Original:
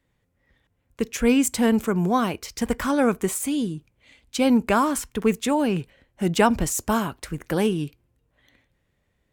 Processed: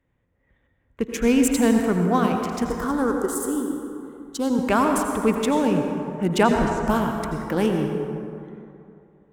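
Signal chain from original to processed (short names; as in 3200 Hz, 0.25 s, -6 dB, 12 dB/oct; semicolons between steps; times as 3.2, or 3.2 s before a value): Wiener smoothing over 9 samples; 2.7–4.59 fixed phaser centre 640 Hz, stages 6; 6.43–6.88 LPF 2800 Hz 12 dB/oct; on a send: reverb RT60 2.7 s, pre-delay 73 ms, DRR 3 dB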